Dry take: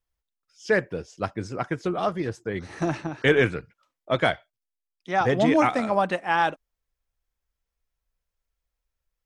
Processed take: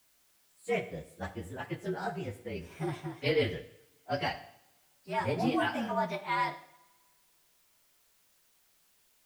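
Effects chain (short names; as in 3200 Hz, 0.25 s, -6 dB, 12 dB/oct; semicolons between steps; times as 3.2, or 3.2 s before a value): inharmonic rescaling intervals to 113%; added noise white -62 dBFS; two-slope reverb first 0.68 s, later 2.1 s, from -24 dB, DRR 9 dB; gain -7 dB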